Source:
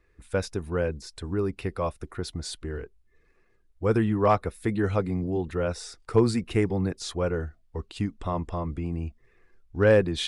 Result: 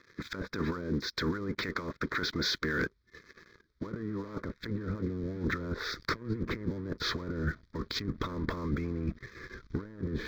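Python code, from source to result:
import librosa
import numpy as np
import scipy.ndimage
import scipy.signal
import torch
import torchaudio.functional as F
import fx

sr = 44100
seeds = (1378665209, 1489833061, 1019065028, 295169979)

y = fx.spec_clip(x, sr, under_db=17)
y = fx.highpass(y, sr, hz=fx.steps((0.0, 200.0), (4.45, 48.0)), slope=6)
y = fx.env_lowpass_down(y, sr, base_hz=680.0, full_db=-24.0)
y = scipy.signal.sosfilt(scipy.signal.butter(4, 5100.0, 'lowpass', fs=sr, output='sos'), y)
y = fx.over_compress(y, sr, threshold_db=-39.0, ratio=-1.0)
y = fx.leveller(y, sr, passes=3)
y = fx.fixed_phaser(y, sr, hz=2800.0, stages=6)
y = F.gain(torch.from_numpy(y), -4.5).numpy()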